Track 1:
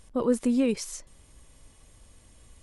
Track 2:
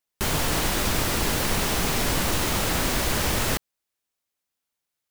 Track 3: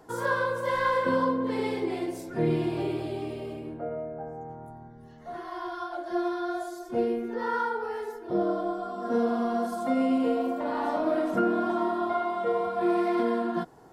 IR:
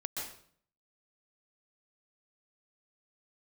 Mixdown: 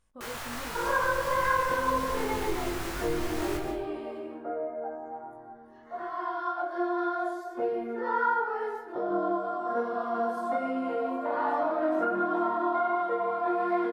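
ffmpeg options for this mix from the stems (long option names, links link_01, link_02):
-filter_complex "[0:a]volume=-17dB[link_01];[1:a]asubboost=boost=4.5:cutoff=240,volume=-16dB,asplit=2[link_02][link_03];[link_03]volume=-4dB[link_04];[2:a]highshelf=frequency=2200:gain=-10,adelay=650,volume=1dB,asplit=2[link_05][link_06];[link_06]volume=-12dB[link_07];[link_02][link_05]amix=inputs=2:normalize=0,highpass=frequency=230:width=0.5412,highpass=frequency=230:width=1.3066,acompressor=threshold=-26dB:ratio=6,volume=0dB[link_08];[3:a]atrim=start_sample=2205[link_09];[link_04][link_07]amix=inputs=2:normalize=0[link_10];[link_10][link_09]afir=irnorm=-1:irlink=0[link_11];[link_01][link_08][link_11]amix=inputs=3:normalize=0,flanger=delay=19.5:depth=2.9:speed=1.3,equalizer=frequency=1300:width=0.8:gain=8"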